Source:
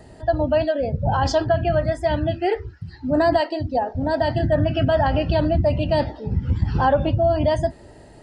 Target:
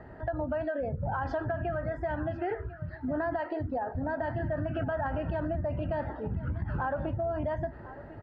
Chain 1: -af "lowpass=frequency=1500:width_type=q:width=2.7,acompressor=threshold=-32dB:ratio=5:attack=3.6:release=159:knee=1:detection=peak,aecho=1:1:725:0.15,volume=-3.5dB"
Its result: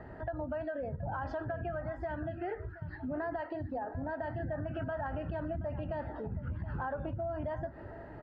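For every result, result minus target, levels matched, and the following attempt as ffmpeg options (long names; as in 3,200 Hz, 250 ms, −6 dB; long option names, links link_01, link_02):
echo 324 ms early; downward compressor: peak gain reduction +5 dB
-af "lowpass=frequency=1500:width_type=q:width=2.7,acompressor=threshold=-32dB:ratio=5:attack=3.6:release=159:knee=1:detection=peak,aecho=1:1:1049:0.15,volume=-3.5dB"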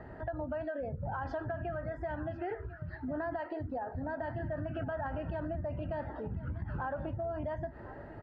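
downward compressor: peak gain reduction +5 dB
-af "lowpass=frequency=1500:width_type=q:width=2.7,acompressor=threshold=-25.5dB:ratio=5:attack=3.6:release=159:knee=1:detection=peak,aecho=1:1:1049:0.15,volume=-3.5dB"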